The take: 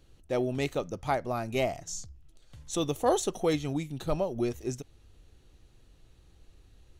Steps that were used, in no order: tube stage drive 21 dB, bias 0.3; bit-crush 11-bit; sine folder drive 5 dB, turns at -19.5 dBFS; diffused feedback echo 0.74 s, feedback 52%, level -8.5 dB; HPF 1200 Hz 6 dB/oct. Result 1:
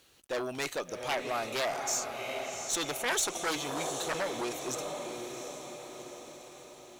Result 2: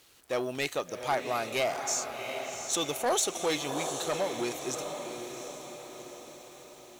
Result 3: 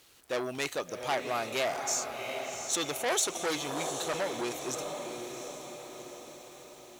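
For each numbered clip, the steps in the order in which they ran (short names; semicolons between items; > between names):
diffused feedback echo > sine folder > HPF > bit-crush > tube stage; diffused feedback echo > tube stage > bit-crush > HPF > sine folder; diffused feedback echo > tube stage > bit-crush > sine folder > HPF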